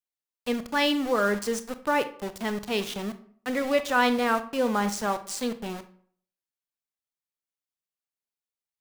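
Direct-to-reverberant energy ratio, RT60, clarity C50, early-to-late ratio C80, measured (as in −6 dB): 10.5 dB, 0.55 s, 14.0 dB, 18.0 dB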